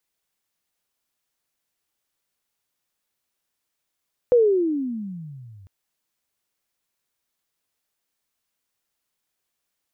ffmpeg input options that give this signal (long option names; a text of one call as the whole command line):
ffmpeg -f lavfi -i "aevalsrc='pow(10,(-11-32.5*t/1.35)/20)*sin(2*PI*504*1.35/(-29.5*log(2)/12)*(exp(-29.5*log(2)/12*t/1.35)-1))':duration=1.35:sample_rate=44100" out.wav